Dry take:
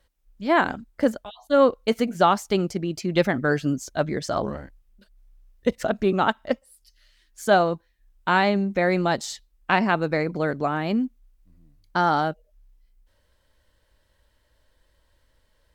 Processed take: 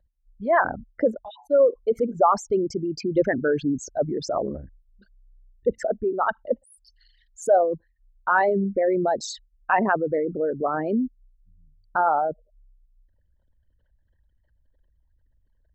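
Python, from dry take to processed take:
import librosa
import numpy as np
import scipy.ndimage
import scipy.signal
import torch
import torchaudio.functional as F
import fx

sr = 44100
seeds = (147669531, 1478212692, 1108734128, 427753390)

y = fx.envelope_sharpen(x, sr, power=3.0)
y = fx.peak_eq(y, sr, hz=fx.line((5.78, 68.0), (6.39, 490.0)), db=-8.5, octaves=1.8, at=(5.78, 6.39), fade=0.02)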